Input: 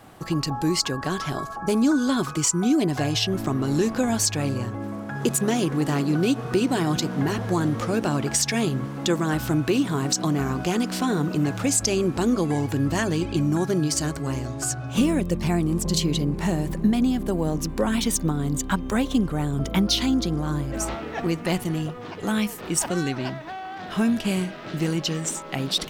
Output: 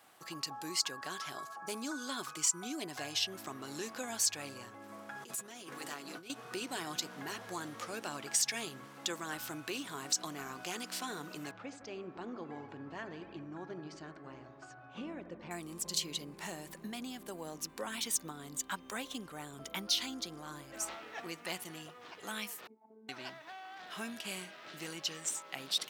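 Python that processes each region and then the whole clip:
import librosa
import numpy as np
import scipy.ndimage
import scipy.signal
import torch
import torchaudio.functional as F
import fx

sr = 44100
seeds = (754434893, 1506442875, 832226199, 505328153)

y = fx.chain(x, sr, fx.notch_comb(f0_hz=150.0),
    fx.over_compress(threshold_db=-29.0, ratio=-1.0), at=(4.89, 6.3))
y = fx.chain(y, sr, fx.spacing_loss(db_at_10k=39),
    fx.echo_bbd(ms=78, stages=1024, feedback_pct=76, wet_db=-12.0), at=(11.51, 15.51))
y = fx.chain(y, sr, fx.formant_cascade(vowel='u'),
    fx.robotise(hz=219.0), at=(22.67, 23.09))
y = fx.highpass(y, sr, hz=1400.0, slope=6)
y = fx.high_shelf(y, sr, hz=11000.0, db=3.0)
y = y * 10.0 ** (-8.0 / 20.0)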